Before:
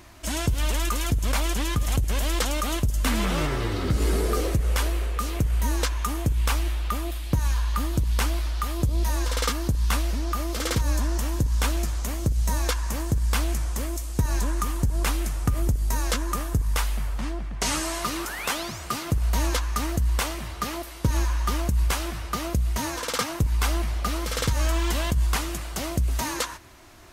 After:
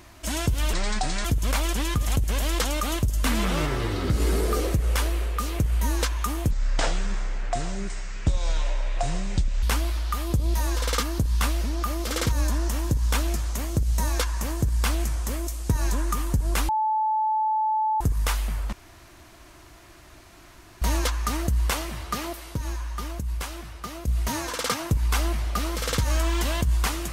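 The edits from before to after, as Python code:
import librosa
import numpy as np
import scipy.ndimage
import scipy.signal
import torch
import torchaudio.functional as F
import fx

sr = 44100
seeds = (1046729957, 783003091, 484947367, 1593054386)

y = fx.edit(x, sr, fx.speed_span(start_s=0.73, length_s=0.32, speed=0.62),
    fx.speed_span(start_s=6.31, length_s=1.81, speed=0.58),
    fx.bleep(start_s=15.18, length_s=1.32, hz=869.0, db=-20.5),
    fx.room_tone_fill(start_s=17.22, length_s=2.09),
    fx.clip_gain(start_s=21.04, length_s=1.53, db=-7.0), tone=tone)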